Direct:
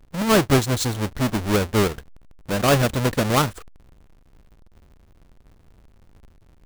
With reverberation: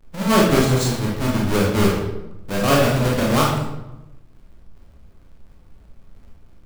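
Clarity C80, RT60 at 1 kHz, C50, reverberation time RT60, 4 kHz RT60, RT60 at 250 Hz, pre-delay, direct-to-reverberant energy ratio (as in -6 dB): 5.5 dB, 0.90 s, 2.0 dB, 0.95 s, 0.65 s, 1.2 s, 21 ms, -3.5 dB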